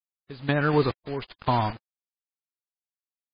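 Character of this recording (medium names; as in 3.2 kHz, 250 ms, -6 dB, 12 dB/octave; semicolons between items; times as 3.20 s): a quantiser's noise floor 6-bit, dither none; random-step tremolo 4.1 Hz, depth 85%; MP3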